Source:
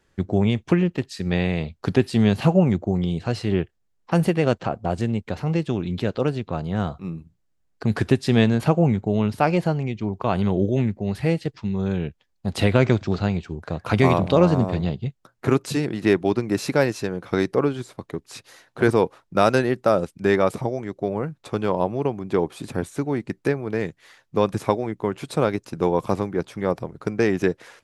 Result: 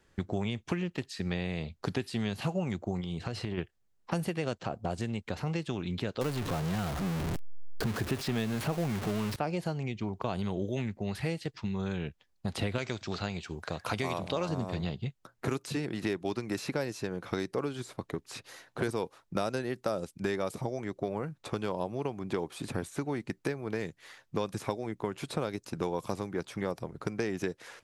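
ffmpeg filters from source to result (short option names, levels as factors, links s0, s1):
-filter_complex "[0:a]asplit=3[s0][s1][s2];[s0]afade=t=out:st=3:d=0.02[s3];[s1]acompressor=threshold=0.0562:ratio=6:attack=3.2:release=140:knee=1:detection=peak,afade=t=in:st=3:d=0.02,afade=t=out:st=3.57:d=0.02[s4];[s2]afade=t=in:st=3.57:d=0.02[s5];[s3][s4][s5]amix=inputs=3:normalize=0,asettb=1/sr,asplit=3[s6][s7][s8];[s6]atrim=end=6.214[s9];[s7]atrim=start=6.21:end=9.36,asetpts=PTS-STARTPTS,afade=t=in:d=0.004:c=qsin,afade=t=out:st=3.146:d=0.004:c=qsin,aeval=exprs='val(0)+0.5*0.0944*sgn(val(0))':c=same[s10];[s8]atrim=start=9.356[s11];[s9][s10]acrossfade=d=0.004:c1=hsin:c2=qsin[s12];[s12][s11]acrossfade=d=0.004:c1=qsin:c2=hsin,asettb=1/sr,asplit=3[s13][s14][s15];[s13]atrim=end=12.784[s16];[s14]atrim=start=12.78:end=14.49,asetpts=PTS-STARTPTS,afade=t=in:d=0.004:c=qsin,afade=t=out:st=1.706:d=0.004:c=qsin,tiltshelf=f=800:g=-8[s17];[s15]atrim=start=14.486[s18];[s16][s17]acrossfade=d=0.004:c1=hsin:c2=qsin[s19];[s19][s18]acrossfade=d=0.004:c1=qsin:c2=hsin,acrossover=split=860|3700[s20][s21][s22];[s20]acompressor=threshold=0.0282:ratio=4[s23];[s21]acompressor=threshold=0.00891:ratio=4[s24];[s22]acompressor=threshold=0.00562:ratio=4[s25];[s23][s24][s25]amix=inputs=3:normalize=0,volume=0.891"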